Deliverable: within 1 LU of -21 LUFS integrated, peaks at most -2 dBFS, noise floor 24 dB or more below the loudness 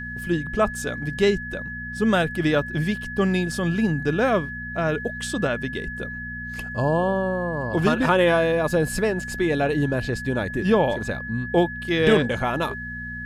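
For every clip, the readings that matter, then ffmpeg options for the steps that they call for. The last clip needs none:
hum 60 Hz; harmonics up to 240 Hz; hum level -36 dBFS; steady tone 1700 Hz; tone level -32 dBFS; loudness -23.5 LUFS; peak -6.0 dBFS; loudness target -21.0 LUFS
-> -af "bandreject=f=60:t=h:w=4,bandreject=f=120:t=h:w=4,bandreject=f=180:t=h:w=4,bandreject=f=240:t=h:w=4"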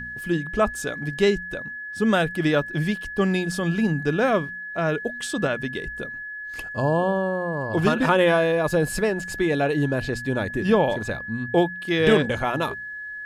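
hum none; steady tone 1700 Hz; tone level -32 dBFS
-> -af "bandreject=f=1.7k:w=30"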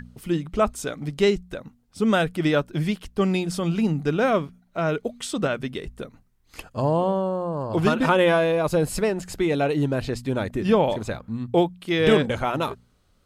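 steady tone none; loudness -23.5 LUFS; peak -5.5 dBFS; loudness target -21.0 LUFS
-> -af "volume=2.5dB"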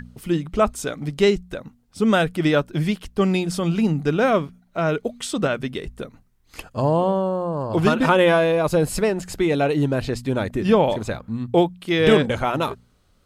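loudness -21.0 LUFS; peak -3.0 dBFS; noise floor -60 dBFS

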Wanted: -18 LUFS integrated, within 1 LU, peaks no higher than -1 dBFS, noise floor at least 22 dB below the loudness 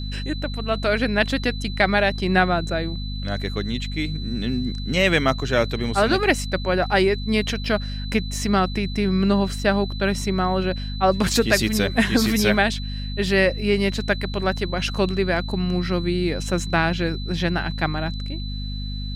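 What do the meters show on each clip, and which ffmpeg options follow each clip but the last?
hum 50 Hz; harmonics up to 250 Hz; hum level -26 dBFS; steady tone 4000 Hz; tone level -36 dBFS; loudness -22.0 LUFS; peak -4.0 dBFS; loudness target -18.0 LUFS
-> -af "bandreject=f=50:t=h:w=4,bandreject=f=100:t=h:w=4,bandreject=f=150:t=h:w=4,bandreject=f=200:t=h:w=4,bandreject=f=250:t=h:w=4"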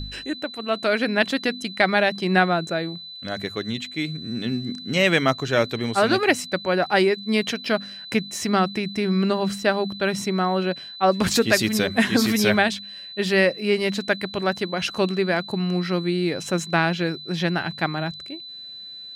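hum none; steady tone 4000 Hz; tone level -36 dBFS
-> -af "bandreject=f=4k:w=30"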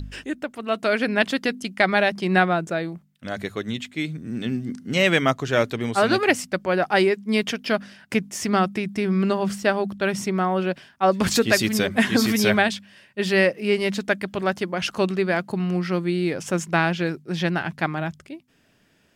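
steady tone none; loudness -23.0 LUFS; peak -4.5 dBFS; loudness target -18.0 LUFS
-> -af "volume=5dB,alimiter=limit=-1dB:level=0:latency=1"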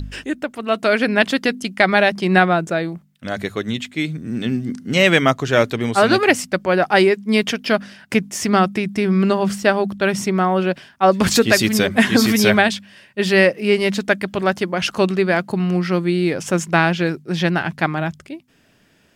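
loudness -18.0 LUFS; peak -1.0 dBFS; noise floor -56 dBFS

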